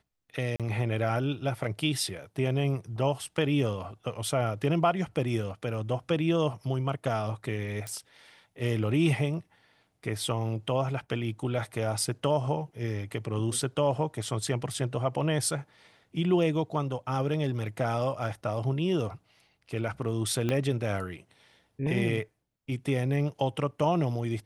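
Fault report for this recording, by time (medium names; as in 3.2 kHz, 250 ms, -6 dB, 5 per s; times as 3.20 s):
0.56–0.60 s: dropout 37 ms
7.87 s: pop
20.49 s: pop -16 dBFS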